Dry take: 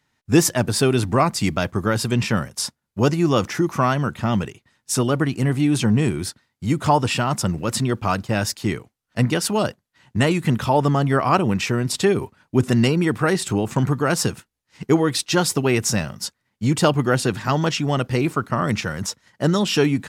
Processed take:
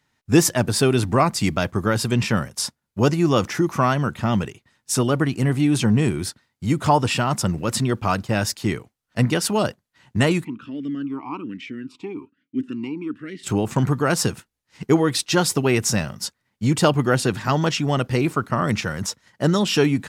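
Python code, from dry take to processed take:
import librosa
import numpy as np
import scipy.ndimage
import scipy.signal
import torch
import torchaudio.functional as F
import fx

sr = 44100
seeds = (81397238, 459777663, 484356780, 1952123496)

y = fx.vowel_sweep(x, sr, vowels='i-u', hz=1.2, at=(10.43, 13.43), fade=0.02)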